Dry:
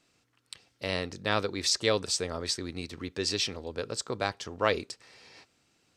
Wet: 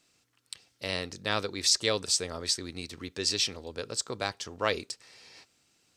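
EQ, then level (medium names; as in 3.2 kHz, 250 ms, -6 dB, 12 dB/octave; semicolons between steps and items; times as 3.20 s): treble shelf 3.5 kHz +8.5 dB; -3.0 dB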